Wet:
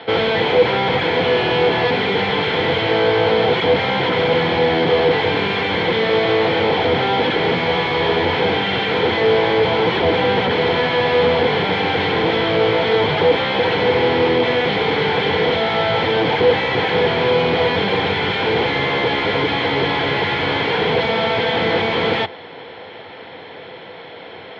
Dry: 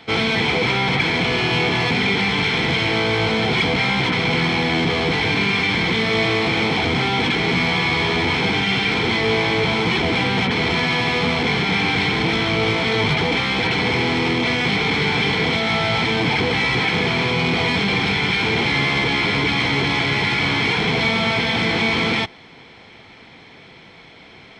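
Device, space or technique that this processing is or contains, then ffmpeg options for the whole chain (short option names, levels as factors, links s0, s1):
overdrive pedal into a guitar cabinet: -filter_complex "[0:a]asplit=2[s0][s1];[s1]highpass=f=720:p=1,volume=10,asoftclip=type=tanh:threshold=0.447[s2];[s0][s2]amix=inputs=2:normalize=0,lowpass=f=1900:p=1,volume=0.501,highpass=85,equalizer=f=90:t=q:w=4:g=9,equalizer=f=230:t=q:w=4:g=-4,equalizer=f=500:t=q:w=4:g=8,equalizer=f=1200:t=q:w=4:g=-6,equalizer=f=2300:t=q:w=4:g=-9,lowpass=f=3900:w=0.5412,lowpass=f=3900:w=1.3066"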